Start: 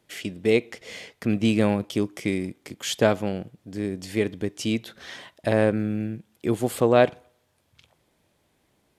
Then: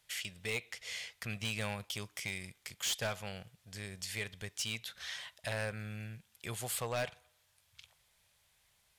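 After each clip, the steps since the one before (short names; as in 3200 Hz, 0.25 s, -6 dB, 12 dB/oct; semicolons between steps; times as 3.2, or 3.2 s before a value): passive tone stack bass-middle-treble 10-0-10; in parallel at -1 dB: compressor, threshold -45 dBFS, peak gain reduction 19.5 dB; on the sum: overloaded stage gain 27.5 dB; gain -2.5 dB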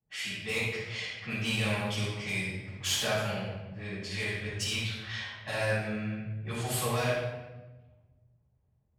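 low-pass opened by the level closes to 310 Hz, open at -35.5 dBFS; HPF 59 Hz; reverb RT60 1.2 s, pre-delay 4 ms, DRR -12.5 dB; gain -8 dB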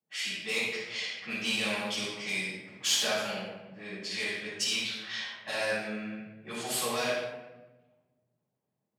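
HPF 190 Hz 24 dB/oct; dynamic EQ 5000 Hz, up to +6 dB, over -48 dBFS, Q 0.83; gain -1 dB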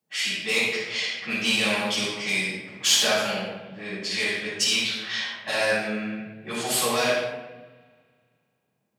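spring tank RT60 2.4 s, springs 30 ms, chirp 65 ms, DRR 19.5 dB; gain +7.5 dB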